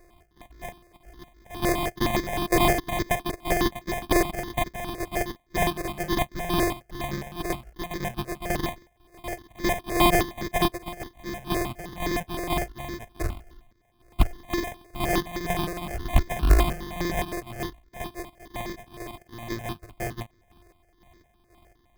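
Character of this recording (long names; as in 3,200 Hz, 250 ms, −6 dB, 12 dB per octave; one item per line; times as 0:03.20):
a buzz of ramps at a fixed pitch in blocks of 128 samples
chopped level 2 Hz, depth 60%, duty 45%
aliases and images of a low sample rate 1,400 Hz, jitter 0%
notches that jump at a steady rate 9.7 Hz 870–2,800 Hz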